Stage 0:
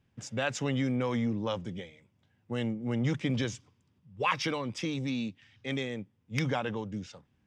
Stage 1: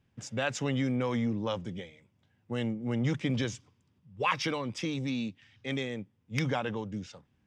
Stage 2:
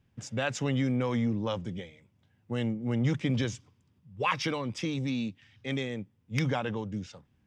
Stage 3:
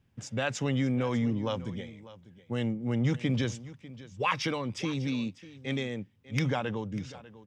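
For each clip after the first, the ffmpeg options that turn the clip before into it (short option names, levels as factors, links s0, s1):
-af anull
-af "lowshelf=f=160:g=4.5"
-af "aecho=1:1:596:0.133"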